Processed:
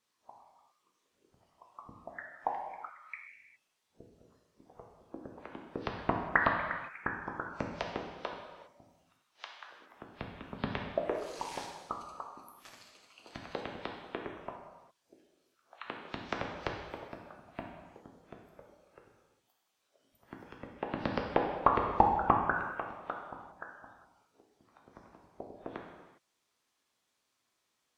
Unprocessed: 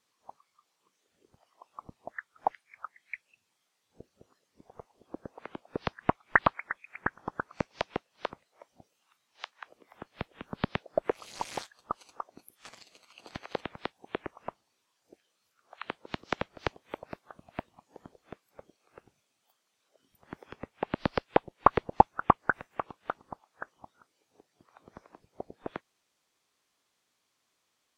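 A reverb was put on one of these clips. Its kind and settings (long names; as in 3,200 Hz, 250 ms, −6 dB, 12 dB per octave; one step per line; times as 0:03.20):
reverb whose tail is shaped and stops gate 430 ms falling, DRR 0 dB
level −5.5 dB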